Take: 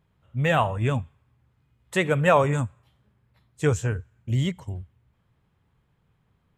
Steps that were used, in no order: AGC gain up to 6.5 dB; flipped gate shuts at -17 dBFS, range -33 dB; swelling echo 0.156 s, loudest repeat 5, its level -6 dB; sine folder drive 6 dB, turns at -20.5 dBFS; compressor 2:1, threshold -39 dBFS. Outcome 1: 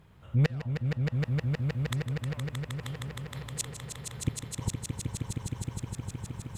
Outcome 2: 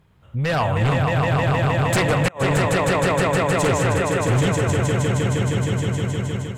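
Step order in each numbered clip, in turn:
compressor > sine folder > AGC > flipped gate > swelling echo; compressor > swelling echo > flipped gate > sine folder > AGC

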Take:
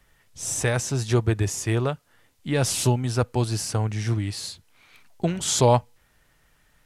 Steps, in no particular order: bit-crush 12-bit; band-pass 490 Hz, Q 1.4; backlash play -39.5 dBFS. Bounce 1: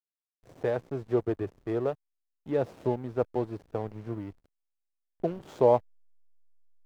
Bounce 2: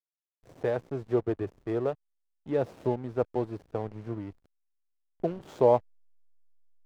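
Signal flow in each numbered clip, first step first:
band-pass > bit-crush > backlash; bit-crush > band-pass > backlash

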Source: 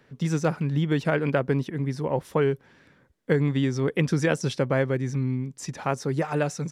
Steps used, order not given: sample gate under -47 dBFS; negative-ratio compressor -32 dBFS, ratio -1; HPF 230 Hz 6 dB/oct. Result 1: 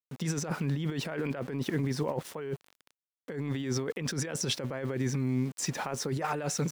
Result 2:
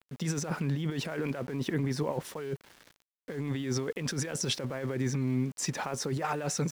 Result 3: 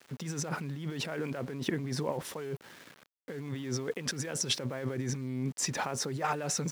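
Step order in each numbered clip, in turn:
sample gate > HPF > negative-ratio compressor; HPF > negative-ratio compressor > sample gate; negative-ratio compressor > sample gate > HPF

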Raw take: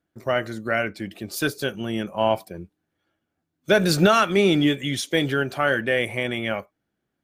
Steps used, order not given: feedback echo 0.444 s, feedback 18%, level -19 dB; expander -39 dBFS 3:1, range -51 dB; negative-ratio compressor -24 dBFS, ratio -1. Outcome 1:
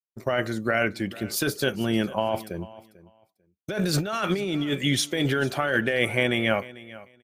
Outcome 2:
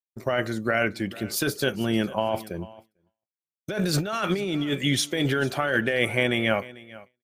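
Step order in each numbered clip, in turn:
expander > negative-ratio compressor > feedback echo; negative-ratio compressor > feedback echo > expander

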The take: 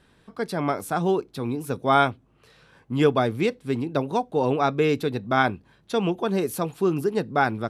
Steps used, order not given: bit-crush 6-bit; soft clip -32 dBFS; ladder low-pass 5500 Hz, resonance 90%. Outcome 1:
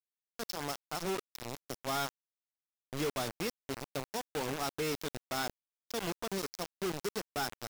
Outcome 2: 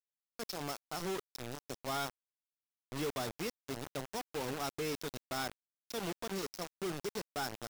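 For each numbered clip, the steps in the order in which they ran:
ladder low-pass > soft clip > bit-crush; ladder low-pass > bit-crush > soft clip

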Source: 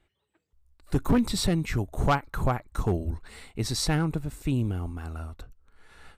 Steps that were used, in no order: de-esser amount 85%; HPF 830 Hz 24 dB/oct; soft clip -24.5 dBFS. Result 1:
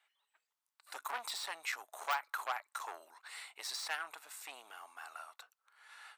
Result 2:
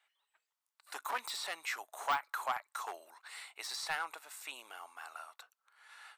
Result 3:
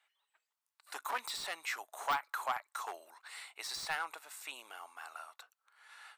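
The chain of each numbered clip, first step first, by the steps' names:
soft clip > HPF > de-esser; HPF > de-esser > soft clip; HPF > soft clip > de-esser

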